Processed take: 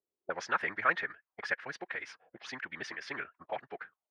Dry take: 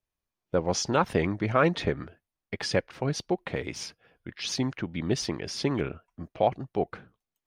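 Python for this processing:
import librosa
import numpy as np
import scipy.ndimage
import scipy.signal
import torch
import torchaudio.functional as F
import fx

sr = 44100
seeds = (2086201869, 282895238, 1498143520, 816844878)

y = fx.stretch_vocoder(x, sr, factor=0.55)
y = fx.auto_wah(y, sr, base_hz=400.0, top_hz=1700.0, q=4.1, full_db=-32.0, direction='up')
y = y * 10.0 ** (9.0 / 20.0)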